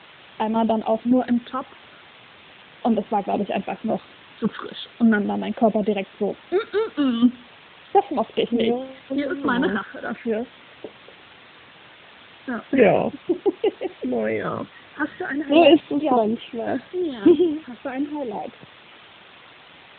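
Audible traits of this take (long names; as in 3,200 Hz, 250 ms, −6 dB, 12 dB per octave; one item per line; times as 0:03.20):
tremolo saw down 1.8 Hz, depth 55%
phaser sweep stages 8, 0.39 Hz, lowest notch 690–1,500 Hz
a quantiser's noise floor 8 bits, dither triangular
AMR narrowband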